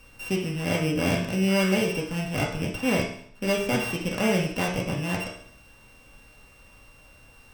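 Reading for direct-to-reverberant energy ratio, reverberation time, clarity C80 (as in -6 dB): -3.5 dB, 0.60 s, 9.0 dB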